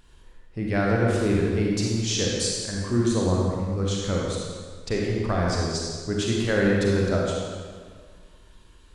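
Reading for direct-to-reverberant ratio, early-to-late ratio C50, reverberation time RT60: −3.0 dB, −1.5 dB, 1.8 s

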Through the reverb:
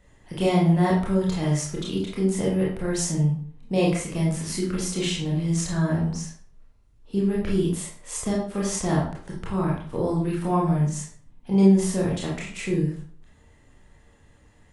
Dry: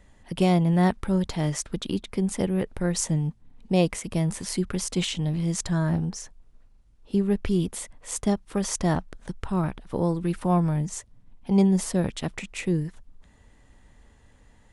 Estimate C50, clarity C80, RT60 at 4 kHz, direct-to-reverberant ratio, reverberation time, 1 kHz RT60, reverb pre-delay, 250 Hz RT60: 3.5 dB, 8.5 dB, 0.40 s, −4.5 dB, 0.50 s, 0.50 s, 22 ms, 0.50 s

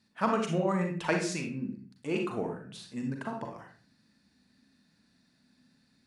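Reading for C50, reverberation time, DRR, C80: 5.0 dB, 0.45 s, 2.0 dB, 10.0 dB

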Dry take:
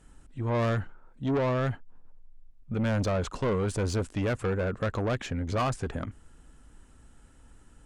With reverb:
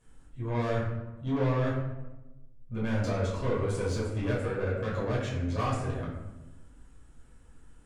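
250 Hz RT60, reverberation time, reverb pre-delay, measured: 1.5 s, 1.1 s, 8 ms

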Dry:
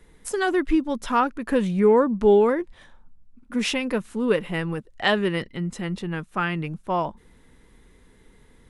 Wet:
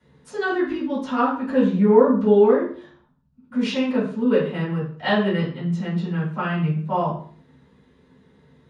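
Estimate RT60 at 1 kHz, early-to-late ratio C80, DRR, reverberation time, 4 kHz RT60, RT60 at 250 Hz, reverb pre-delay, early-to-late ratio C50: 0.45 s, 9.5 dB, −11.5 dB, 0.45 s, 0.40 s, 0.50 s, 3 ms, 4.5 dB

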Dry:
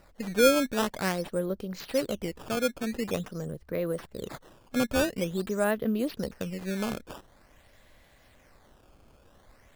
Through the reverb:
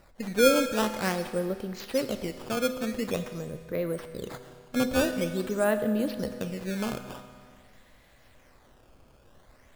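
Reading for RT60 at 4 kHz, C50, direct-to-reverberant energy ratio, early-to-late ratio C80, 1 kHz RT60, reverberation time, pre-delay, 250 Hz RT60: 1.9 s, 9.0 dB, 7.5 dB, 10.0 dB, 2.0 s, 2.0 s, 8 ms, 2.0 s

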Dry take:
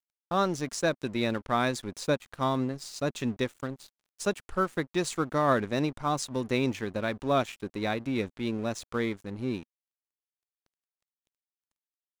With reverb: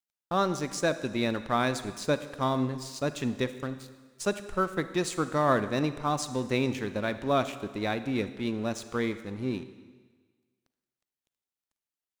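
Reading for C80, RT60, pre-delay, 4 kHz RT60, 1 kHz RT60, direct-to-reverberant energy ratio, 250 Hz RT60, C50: 14.0 dB, 1.5 s, 36 ms, 1.4 s, 1.5 s, 12.0 dB, 1.4 s, 12.5 dB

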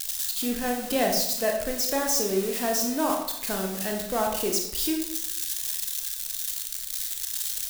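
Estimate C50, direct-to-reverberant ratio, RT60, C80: 4.5 dB, 1.0 dB, 0.75 s, 7.5 dB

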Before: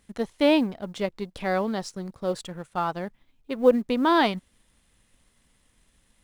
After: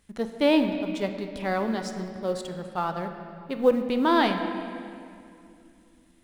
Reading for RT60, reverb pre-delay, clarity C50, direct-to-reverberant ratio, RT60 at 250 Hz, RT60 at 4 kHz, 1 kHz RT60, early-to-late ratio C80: 2.5 s, 15 ms, 7.0 dB, 6.0 dB, 3.7 s, 1.8 s, 2.4 s, 8.0 dB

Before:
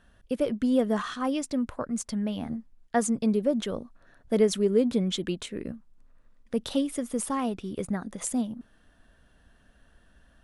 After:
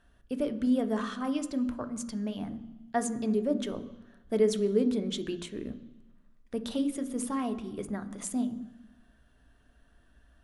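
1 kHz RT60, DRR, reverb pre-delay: 1.1 s, 8.0 dB, 3 ms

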